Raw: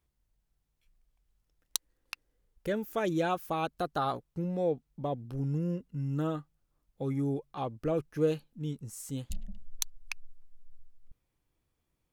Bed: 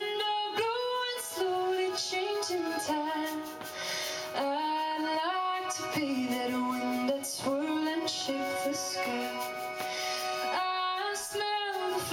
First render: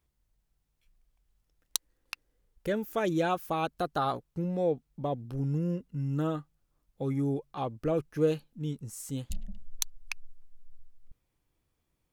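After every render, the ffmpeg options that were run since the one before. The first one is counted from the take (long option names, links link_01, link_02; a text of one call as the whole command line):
ffmpeg -i in.wav -af "volume=1.5dB" out.wav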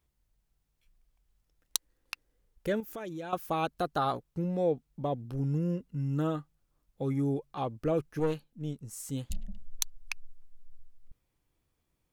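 ffmpeg -i in.wav -filter_complex "[0:a]asettb=1/sr,asplit=3[link_01][link_02][link_03];[link_01]atrim=end=2.804[link_04];[link_02]atrim=start=2.8:end=3.33,asetpts=PTS-STARTPTS,afade=type=in:duration=0.004:curve=qsin,afade=type=out:start_time=0.526:duration=0.004:curve=qsin,acompressor=threshold=-40dB:ratio=3:attack=3.2:release=140:knee=1:detection=peak[link_05];[link_03]atrim=start=3.326[link_06];[link_04][link_05]acrossfade=duration=0.004:curve1=hsin:curve2=qsin[link_07];[link_07][link_06]acrossfade=duration=0.004:curve1=qsin:curve2=hsin,asettb=1/sr,asplit=3[link_08][link_09][link_10];[link_08]atrim=end=8.194[link_11];[link_09]atrim=start=8.19:end=8.91,asetpts=PTS-STARTPTS,afade=type=in:duration=0.004:curve=qsin,afade=type=out:start_time=0.716:duration=0.004:curve=qsin,aeval=exprs='(tanh(12.6*val(0)+0.65)-tanh(0.65))/12.6':channel_layout=same[link_12];[link_10]atrim=start=8.906[link_13];[link_11][link_12]acrossfade=duration=0.004:curve1=hsin:curve2=qsin[link_14];[link_14][link_13]acrossfade=duration=0.004:curve1=qsin:curve2=hsin" out.wav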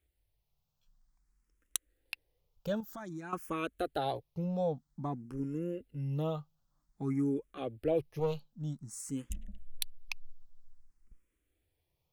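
ffmpeg -i in.wav -filter_complex "[0:a]asplit=2[link_01][link_02];[link_02]afreqshift=0.52[link_03];[link_01][link_03]amix=inputs=2:normalize=1" out.wav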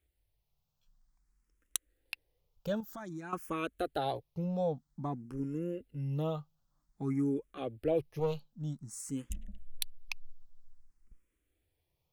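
ffmpeg -i in.wav -af anull out.wav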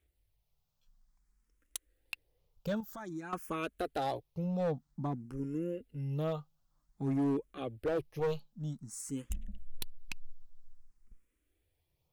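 ffmpeg -i in.wav -af "aphaser=in_gain=1:out_gain=1:delay=4.9:decay=0.26:speed=0.41:type=sinusoidal,asoftclip=type=hard:threshold=-27.5dB" out.wav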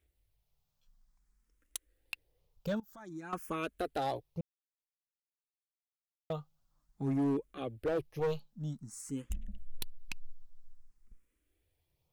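ffmpeg -i in.wav -filter_complex "[0:a]asettb=1/sr,asplit=3[link_01][link_02][link_03];[link_01]atrim=end=8.894[link_04];[link_02]atrim=start=8.89:end=9.46,asetpts=PTS-STARTPTS,afade=type=in:duration=0.004:curve=qsin,afade=type=out:start_time=0.566:duration=0.004:curve=qsin,highshelf=frequency=4200:gain=-4[link_05];[link_03]atrim=start=9.456[link_06];[link_04][link_05]acrossfade=duration=0.004:curve1=hsin:curve2=qsin[link_07];[link_07][link_06]acrossfade=duration=0.004:curve1=qsin:curve2=hsin,asplit=4[link_08][link_09][link_10][link_11];[link_08]atrim=end=2.8,asetpts=PTS-STARTPTS,afade=type=out:start_time=2.796:duration=0.004:curve=hsin:silence=0.177828[link_12];[link_09]atrim=start=2.8:end=4.41,asetpts=PTS-STARTPTS,afade=type=in:duration=0.56:silence=0.177828,afade=type=out:start_time=1.606:duration=0.004:curve=hsin[link_13];[link_10]atrim=start=4.41:end=6.3,asetpts=PTS-STARTPTS,volume=0[link_14];[link_11]atrim=start=6.3,asetpts=PTS-STARTPTS,afade=type=in:duration=0.004:curve=hsin[link_15];[link_12][link_13][link_14][link_15]concat=n=4:v=0:a=1" out.wav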